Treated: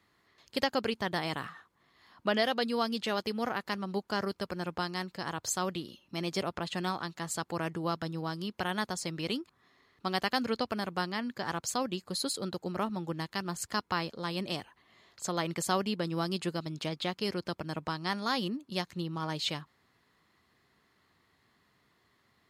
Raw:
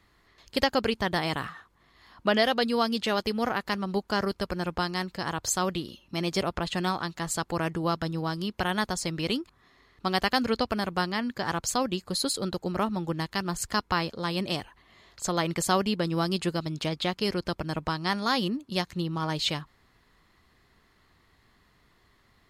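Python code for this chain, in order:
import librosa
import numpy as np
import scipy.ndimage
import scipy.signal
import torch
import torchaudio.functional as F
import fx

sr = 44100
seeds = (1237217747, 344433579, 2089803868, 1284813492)

y = scipy.signal.sosfilt(scipy.signal.butter(2, 110.0, 'highpass', fs=sr, output='sos'), x)
y = y * 10.0 ** (-5.0 / 20.0)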